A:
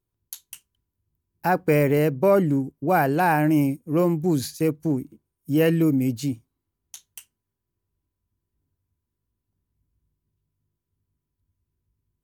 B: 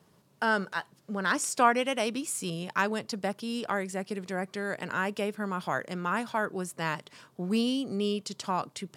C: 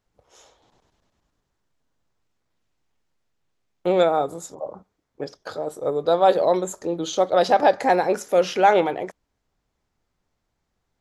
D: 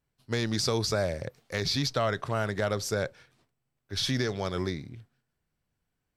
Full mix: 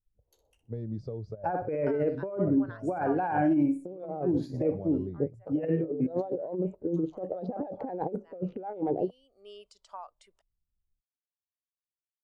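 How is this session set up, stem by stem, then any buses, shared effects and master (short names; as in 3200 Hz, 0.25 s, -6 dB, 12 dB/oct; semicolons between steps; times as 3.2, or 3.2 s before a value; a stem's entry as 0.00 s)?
-8.0 dB, 0.00 s, bus B, no send, echo send -8.5 dB, weighting filter A; wow and flutter 21 cents
+1.5 dB, 1.45 s, bus A, no send, no echo send, HPF 1100 Hz; high shelf 5800 Hz +10.5 dB; auto duck -21 dB, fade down 1.80 s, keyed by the third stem
-6.0 dB, 0.00 s, bus B, no send, no echo send, Wiener smoothing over 25 samples
-18.5 dB, 0.40 s, bus A, no send, no echo send, HPF 94 Hz; low shelf 420 Hz +6 dB; step gate "x.xxxxxxxxx." 174 bpm -12 dB
bus A: 0.0 dB, bell 600 Hz +9.5 dB 1 oct; compressor 6:1, threshold -39 dBFS, peak gain reduction 17.5 dB
bus B: 0.0 dB, limiter -18.5 dBFS, peak gain reduction 7.5 dB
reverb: off
echo: feedback echo 62 ms, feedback 39%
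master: tilt -3 dB/oct; negative-ratio compressor -29 dBFS, ratio -0.5; spectral expander 1.5:1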